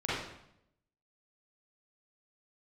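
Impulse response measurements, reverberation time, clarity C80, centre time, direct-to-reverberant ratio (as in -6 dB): 0.75 s, 2.5 dB, 76 ms, -10.0 dB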